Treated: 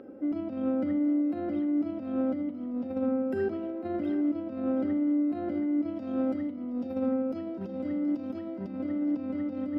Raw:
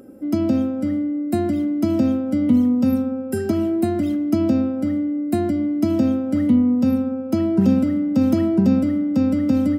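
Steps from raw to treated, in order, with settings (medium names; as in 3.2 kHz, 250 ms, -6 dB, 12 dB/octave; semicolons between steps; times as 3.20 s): tone controls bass -12 dB, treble 0 dB, from 5.95 s treble +11 dB, from 8.67 s treble +3 dB; compressor with a negative ratio -27 dBFS, ratio -0.5; distance through air 360 m; two-band feedback delay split 360 Hz, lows 91 ms, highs 723 ms, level -12 dB; trim -2.5 dB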